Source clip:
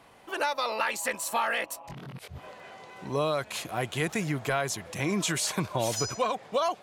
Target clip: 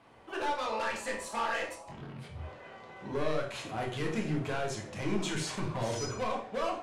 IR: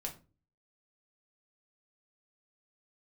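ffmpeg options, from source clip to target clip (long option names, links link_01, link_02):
-filter_complex "[0:a]aemphasis=mode=reproduction:type=50kf,asoftclip=type=hard:threshold=-27.5dB[link_01];[1:a]atrim=start_sample=2205,atrim=end_sample=4410,asetrate=22491,aresample=44100[link_02];[link_01][link_02]afir=irnorm=-1:irlink=0,volume=-5dB"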